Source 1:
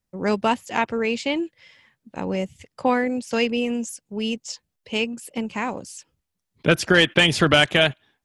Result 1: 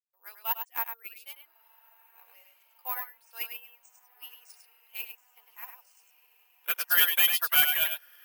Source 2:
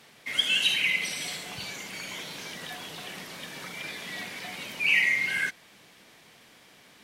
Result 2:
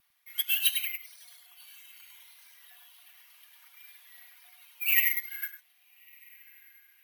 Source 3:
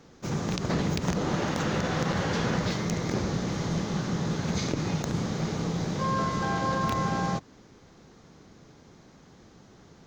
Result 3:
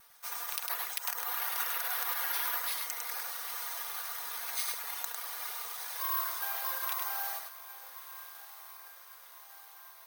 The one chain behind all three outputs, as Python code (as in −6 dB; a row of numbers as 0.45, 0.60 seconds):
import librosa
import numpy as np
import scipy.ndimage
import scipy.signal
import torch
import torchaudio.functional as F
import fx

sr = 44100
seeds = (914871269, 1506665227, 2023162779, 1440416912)

y = scipy.signal.sosfilt(scipy.signal.butter(4, 880.0, 'highpass', fs=sr, output='sos'), x)
y = fx.dereverb_blind(y, sr, rt60_s=1.1)
y = y + 0.49 * np.pad(y, (int(4.2 * sr / 1000.0), 0))[:len(y)]
y = fx.quant_companded(y, sr, bits=6)
y = fx.echo_diffused(y, sr, ms=1295, feedback_pct=60, wet_db=-14)
y = fx.vibrato(y, sr, rate_hz=0.38, depth_cents=9.0)
y = y + 10.0 ** (-4.0 / 20.0) * np.pad(y, (int(102 * sr / 1000.0), 0))[:len(y)]
y = (np.kron(scipy.signal.resample_poly(y, 1, 3), np.eye(3)[0]) * 3)[:len(y)]
y = 10.0 ** (-4.0 / 20.0) * np.tanh(y / 10.0 ** (-4.0 / 20.0))
y = fx.upward_expand(y, sr, threshold_db=-27.0, expansion=2.5)
y = y * 10.0 ** (-9 / 20.0) / np.max(np.abs(y))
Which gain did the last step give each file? −4.5, −3.5, −3.0 decibels